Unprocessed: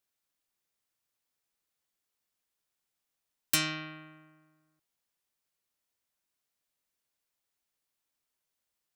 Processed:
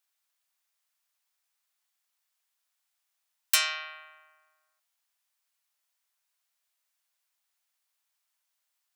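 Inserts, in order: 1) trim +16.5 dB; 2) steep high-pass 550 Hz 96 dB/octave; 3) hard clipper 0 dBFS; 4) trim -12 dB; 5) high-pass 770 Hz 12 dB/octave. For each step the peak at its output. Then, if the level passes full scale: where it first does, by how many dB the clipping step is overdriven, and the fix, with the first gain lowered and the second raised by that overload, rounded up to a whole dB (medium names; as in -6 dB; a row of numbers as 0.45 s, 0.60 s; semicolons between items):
+4.5 dBFS, +4.5 dBFS, 0.0 dBFS, -12.0 dBFS, -10.0 dBFS; step 1, 4.5 dB; step 1 +11.5 dB, step 4 -7 dB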